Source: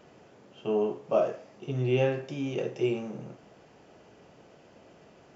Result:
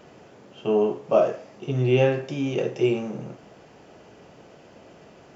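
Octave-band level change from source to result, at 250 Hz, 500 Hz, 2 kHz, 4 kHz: +6.0, +6.0, +6.0, +6.0 dB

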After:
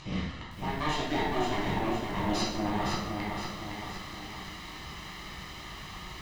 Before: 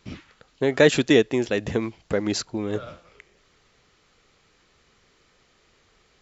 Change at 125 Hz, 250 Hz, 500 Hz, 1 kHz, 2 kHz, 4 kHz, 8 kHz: -3.0 dB, -7.0 dB, -13.0 dB, +7.0 dB, -7.0 dB, -4.0 dB, n/a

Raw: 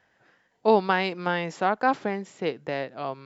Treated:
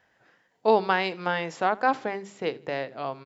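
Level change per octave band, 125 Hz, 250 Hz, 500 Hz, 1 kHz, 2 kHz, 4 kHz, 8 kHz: -4.0 dB, -3.5 dB, -1.0 dB, 0.0 dB, 0.0 dB, 0.0 dB, n/a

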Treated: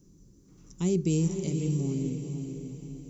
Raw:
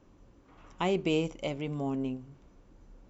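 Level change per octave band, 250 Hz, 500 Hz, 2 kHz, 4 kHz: +4.0, -1.0, -10.5, -6.5 dB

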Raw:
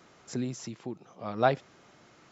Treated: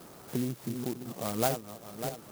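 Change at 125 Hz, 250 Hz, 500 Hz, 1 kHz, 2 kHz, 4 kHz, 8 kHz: +1.0 dB, +1.5 dB, -3.0 dB, -4.5 dB, -6.0 dB, +3.0 dB, n/a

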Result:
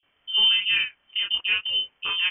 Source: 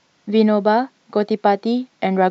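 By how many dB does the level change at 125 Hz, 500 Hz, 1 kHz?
n/a, under -35 dB, -24.0 dB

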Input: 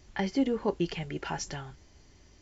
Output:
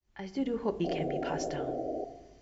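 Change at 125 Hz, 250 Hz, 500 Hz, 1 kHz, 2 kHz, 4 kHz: -3.0, -3.0, +1.5, +0.5, -5.5, -5.0 dB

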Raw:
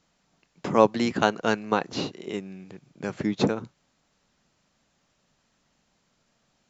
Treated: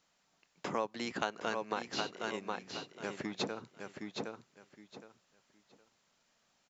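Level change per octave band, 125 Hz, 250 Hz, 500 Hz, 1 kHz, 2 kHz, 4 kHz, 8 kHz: -16.0 dB, -14.5 dB, -13.5 dB, -11.0 dB, -8.0 dB, -6.0 dB, n/a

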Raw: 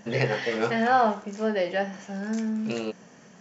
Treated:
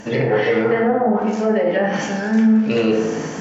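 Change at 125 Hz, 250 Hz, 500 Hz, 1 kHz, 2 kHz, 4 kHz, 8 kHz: +8.0 dB, +12.0 dB, +10.0 dB, +2.5 dB, +5.5 dB, +4.5 dB, n/a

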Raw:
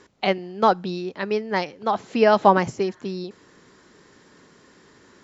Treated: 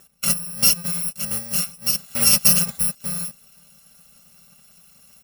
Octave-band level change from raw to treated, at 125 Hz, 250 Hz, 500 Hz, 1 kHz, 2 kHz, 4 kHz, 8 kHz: +1.0 dB, -6.0 dB, -19.5 dB, -18.5 dB, -3.5 dB, +11.0 dB, n/a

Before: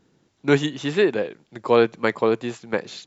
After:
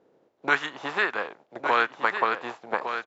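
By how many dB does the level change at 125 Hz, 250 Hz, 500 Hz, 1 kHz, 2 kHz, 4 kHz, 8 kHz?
-20.5 dB, -15.0 dB, -12.0 dB, +3.5 dB, +3.5 dB, -4.0 dB, n/a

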